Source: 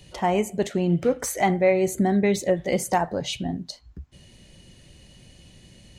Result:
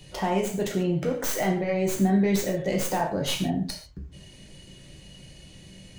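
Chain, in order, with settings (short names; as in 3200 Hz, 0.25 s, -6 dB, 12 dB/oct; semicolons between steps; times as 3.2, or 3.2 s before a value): tracing distortion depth 0.12 ms; limiter -19.5 dBFS, peak gain reduction 11.5 dB; non-linear reverb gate 0.17 s falling, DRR 0.5 dB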